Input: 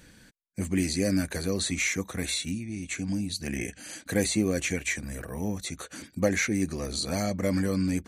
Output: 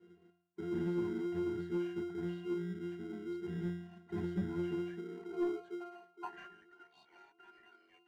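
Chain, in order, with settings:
frequency inversion band by band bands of 500 Hz
resonances in every octave F, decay 0.66 s
high-pass filter sweep 120 Hz → 2,300 Hz, 0:04.59–0:06.97
in parallel at −6 dB: decimation without filtering 25×
on the sum: mid-hump overdrive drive 17 dB, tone 1,200 Hz, clips at −29 dBFS
level +4.5 dB

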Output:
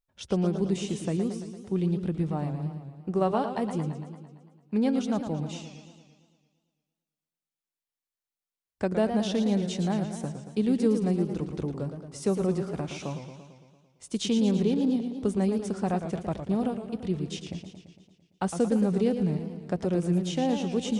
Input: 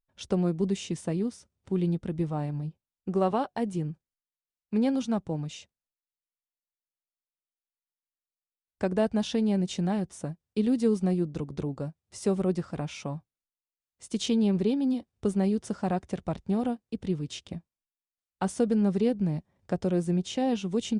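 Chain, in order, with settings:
feedback echo with a swinging delay time 113 ms, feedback 63%, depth 164 cents, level −8.5 dB

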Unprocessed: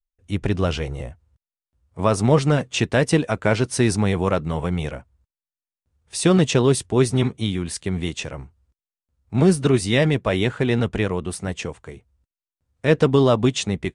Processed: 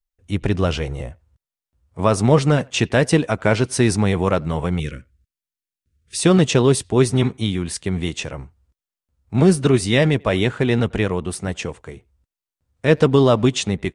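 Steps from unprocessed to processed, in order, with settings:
0:04.80–0:06.18: Butterworth band-reject 790 Hz, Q 0.7
far-end echo of a speakerphone 90 ms, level −27 dB
level +2 dB

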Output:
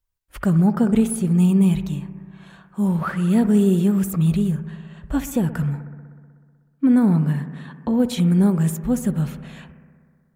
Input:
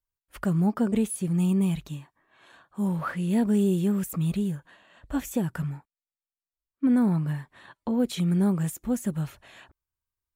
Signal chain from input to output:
low-shelf EQ 120 Hz +8 dB
bucket-brigade delay 62 ms, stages 1,024, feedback 80%, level −15 dB
level +4.5 dB

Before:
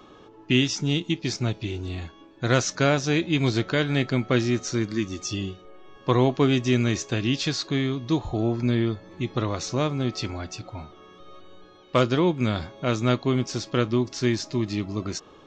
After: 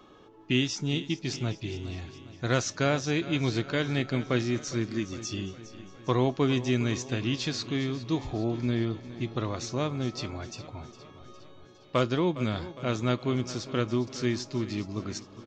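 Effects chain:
repeating echo 409 ms, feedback 58%, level −15.5 dB
level −5 dB

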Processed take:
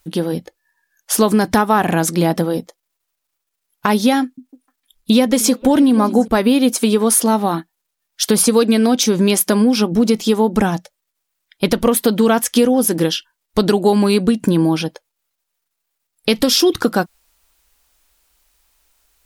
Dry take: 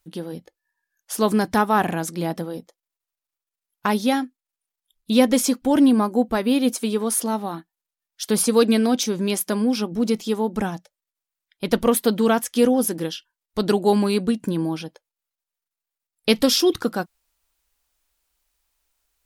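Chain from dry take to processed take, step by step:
downward compressor 6 to 1, threshold −22 dBFS, peak gain reduction 11.5 dB
0:04.22–0:06.28: echo through a band-pass that steps 153 ms, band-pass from 170 Hz, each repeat 1.4 octaves, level −10 dB
boost into a limiter +13 dB
level −1 dB

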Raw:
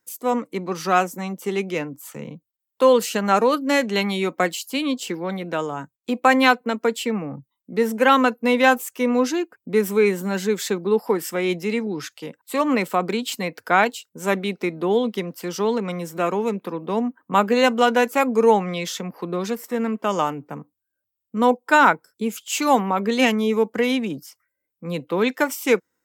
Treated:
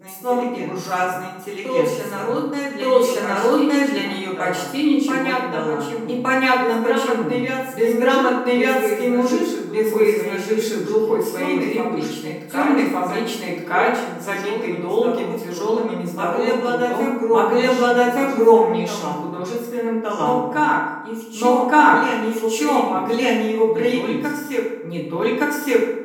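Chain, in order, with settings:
backwards echo 1,167 ms −5.5 dB
feedback delay network reverb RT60 1 s, low-frequency decay 1.2×, high-frequency decay 0.6×, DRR −7 dB
level −8 dB

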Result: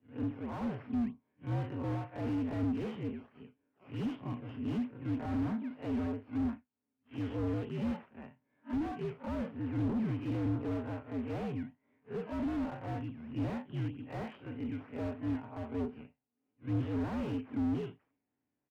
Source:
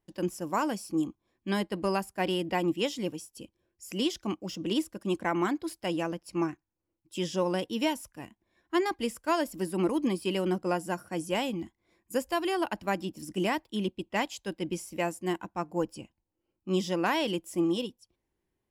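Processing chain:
spectrum smeared in time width 92 ms
comb filter 6.1 ms, depth 36%
in parallel at −4 dB: sample-and-hold swept by an LFO 16×, swing 100% 3.2 Hz
on the sum: single-sideband voice off tune −73 Hz 190–2,800 Hz
slew-rate limiting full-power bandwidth 15 Hz
level −5 dB

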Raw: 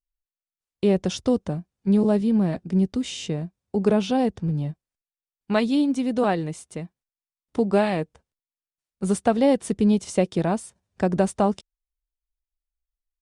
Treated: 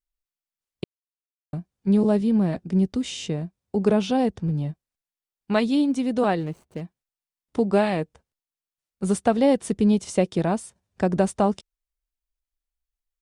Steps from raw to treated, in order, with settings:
0:00.84–0:01.53: silence
0:06.40–0:06.81: running median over 25 samples

